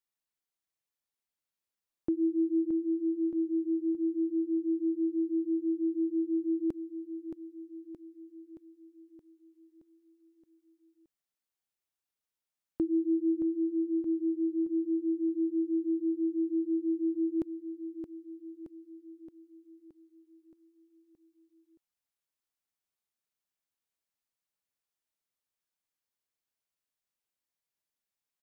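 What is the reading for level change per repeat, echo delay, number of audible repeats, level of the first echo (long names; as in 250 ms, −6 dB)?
−5.0 dB, 622 ms, 6, −8.5 dB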